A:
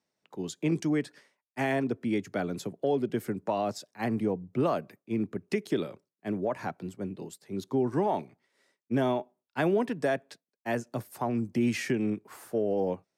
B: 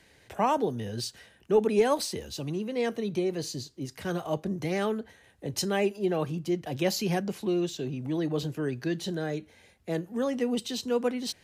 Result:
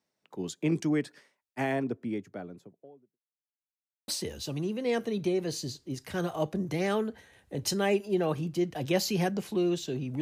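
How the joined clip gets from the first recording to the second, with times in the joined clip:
A
0:01.28–0:03.19: fade out and dull
0:03.19–0:04.08: silence
0:04.08: continue with B from 0:01.99

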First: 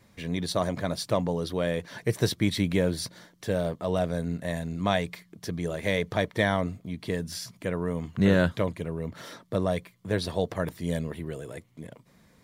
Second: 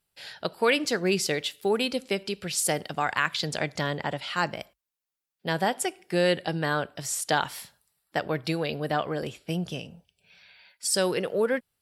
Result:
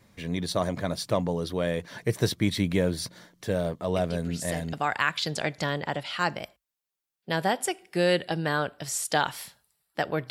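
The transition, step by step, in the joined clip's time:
first
0:03.96: mix in second from 0:02.13 0.77 s −10 dB
0:04.73: continue with second from 0:02.90

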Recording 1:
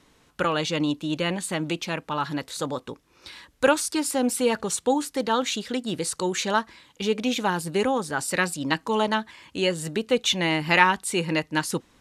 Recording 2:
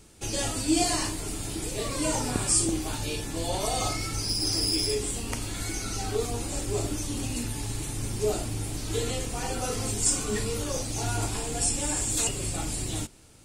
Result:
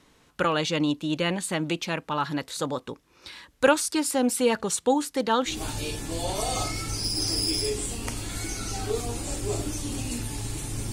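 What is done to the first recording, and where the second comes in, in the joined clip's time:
recording 1
0:05.53: continue with recording 2 from 0:02.78, crossfade 0.18 s

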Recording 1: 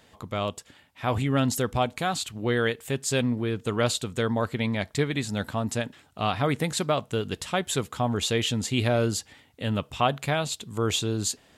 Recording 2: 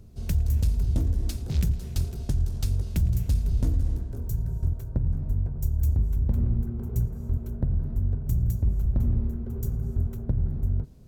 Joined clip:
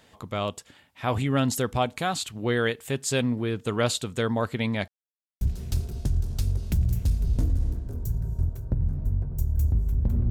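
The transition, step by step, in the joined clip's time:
recording 1
0:04.88–0:05.41: silence
0:05.41: continue with recording 2 from 0:01.65

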